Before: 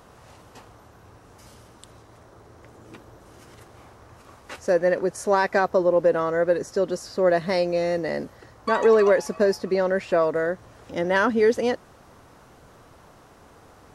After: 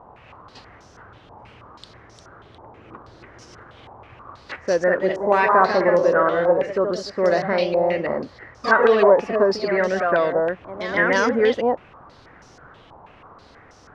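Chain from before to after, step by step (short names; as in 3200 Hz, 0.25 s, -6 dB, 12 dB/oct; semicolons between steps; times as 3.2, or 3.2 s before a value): 4.97–6.53 flutter echo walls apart 10 m, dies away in 0.44 s; echoes that change speed 0.455 s, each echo +1 st, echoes 2, each echo -6 dB; stepped low-pass 6.2 Hz 890–5700 Hz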